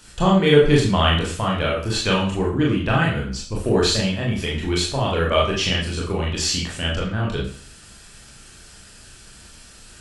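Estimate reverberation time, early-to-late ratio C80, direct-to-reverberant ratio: 0.50 s, 9.0 dB, -3.5 dB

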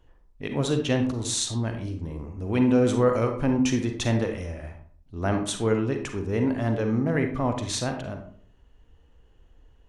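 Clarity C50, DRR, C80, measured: 7.0 dB, 5.0 dB, 11.5 dB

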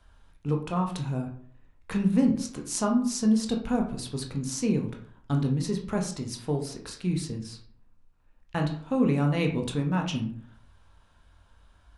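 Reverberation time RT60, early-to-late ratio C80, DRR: 0.55 s, 13.0 dB, 2.0 dB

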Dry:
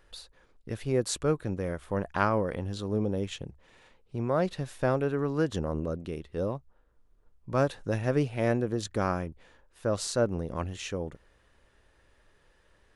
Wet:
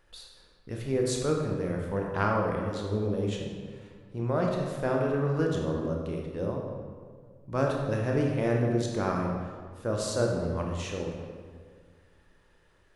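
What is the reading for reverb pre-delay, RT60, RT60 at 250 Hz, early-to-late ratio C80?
19 ms, 1.8 s, 2.2 s, 3.5 dB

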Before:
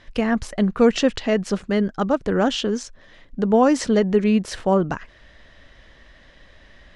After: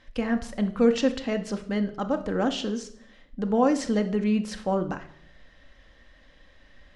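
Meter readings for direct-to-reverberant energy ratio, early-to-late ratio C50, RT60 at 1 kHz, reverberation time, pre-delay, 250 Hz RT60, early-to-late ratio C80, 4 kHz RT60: 6.0 dB, 13.0 dB, 0.60 s, 0.65 s, 4 ms, 0.80 s, 17.0 dB, 0.55 s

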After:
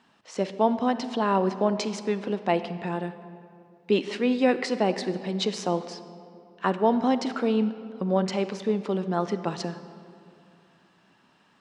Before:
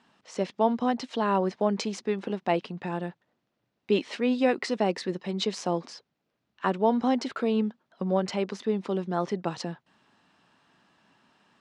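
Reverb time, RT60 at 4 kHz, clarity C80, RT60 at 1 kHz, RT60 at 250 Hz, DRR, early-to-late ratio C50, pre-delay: 2.5 s, 1.4 s, 13.0 dB, 2.3 s, 2.7 s, 11.5 dB, 12.0 dB, 37 ms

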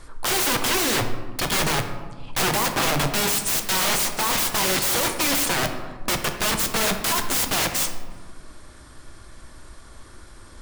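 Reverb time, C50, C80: 1.5 s, 8.0 dB, 10.0 dB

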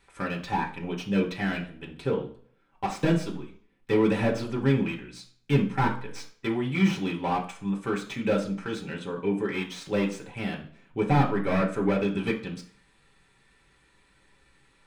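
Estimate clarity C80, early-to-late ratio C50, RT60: 15.5 dB, 11.0 dB, 0.50 s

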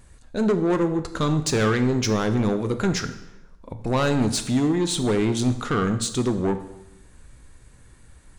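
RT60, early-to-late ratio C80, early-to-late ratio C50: 0.85 s, 14.0 dB, 12.0 dB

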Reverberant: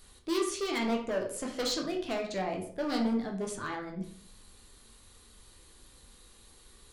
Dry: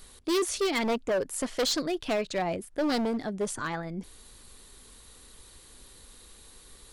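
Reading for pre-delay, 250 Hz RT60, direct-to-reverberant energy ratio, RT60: 11 ms, 0.65 s, 1.0 dB, 0.50 s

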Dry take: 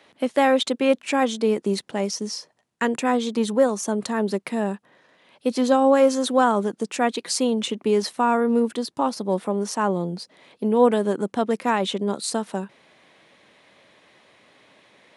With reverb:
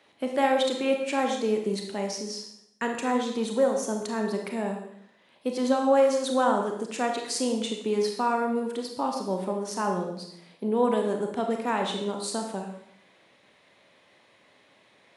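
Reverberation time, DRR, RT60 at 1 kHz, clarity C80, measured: 0.70 s, 2.5 dB, 0.70 s, 7.5 dB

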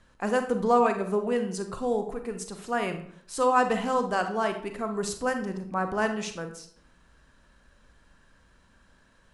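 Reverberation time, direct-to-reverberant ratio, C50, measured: 0.60 s, 6.5 dB, 9.0 dB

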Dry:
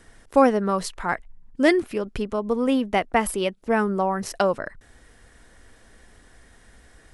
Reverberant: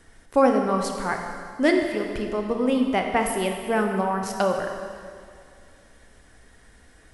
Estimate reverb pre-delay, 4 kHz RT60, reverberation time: 7 ms, 2.1 s, 2.2 s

